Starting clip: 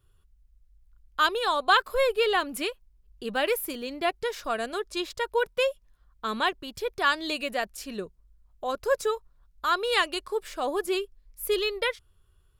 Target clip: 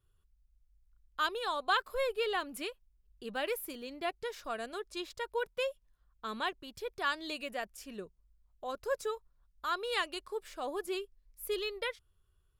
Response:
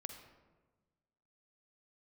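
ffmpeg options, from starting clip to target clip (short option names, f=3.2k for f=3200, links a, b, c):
-filter_complex "[0:a]asettb=1/sr,asplit=3[a][b][c];[a]atrim=end=7.454[d];[b]atrim=start=7.45:end=8.01,asetpts=PTS-STARTPTS,afade=t=in:d=0.004:c=qsin,afade=t=out:st=0.556:d=0.004:c=qsin,equalizer=f=4.1k:w=7.7:g=-8[e];[c]atrim=start=8.006[f];[d][e]acrossfade=d=0.004:c1=hsin:c2=qsin[g];[g][f]acrossfade=d=0.004:c1=qsin:c2=hsin,volume=-9dB"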